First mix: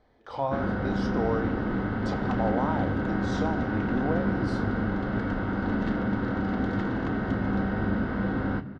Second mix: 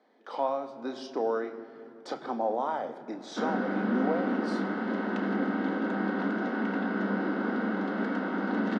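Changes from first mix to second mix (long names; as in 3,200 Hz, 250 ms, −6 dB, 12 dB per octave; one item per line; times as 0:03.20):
background: entry +2.85 s
master: add Butterworth high-pass 200 Hz 48 dB per octave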